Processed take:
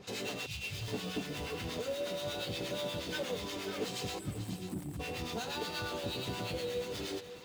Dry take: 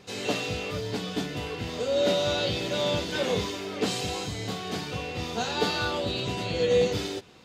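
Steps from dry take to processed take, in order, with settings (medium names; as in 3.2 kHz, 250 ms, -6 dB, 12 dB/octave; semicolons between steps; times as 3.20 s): 0.46–0.88 s: Chebyshev band-stop 140–2500 Hz, order 3; 4.19–5.00 s: spectral selection erased 380–7600 Hz; compression 6:1, threshold -32 dBFS, peak gain reduction 13 dB; in parallel at -10.5 dB: integer overflow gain 34.5 dB; on the sum: harmonic tremolo 8.4 Hz, depth 70%, crossover 900 Hz; on a send: thinning echo 539 ms, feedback 26%, level -10 dB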